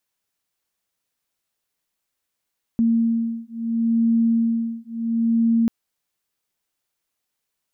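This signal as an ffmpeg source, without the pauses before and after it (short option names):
-f lavfi -i "aevalsrc='0.0944*(sin(2*PI*229*t)+sin(2*PI*229.73*t))':d=2.89:s=44100"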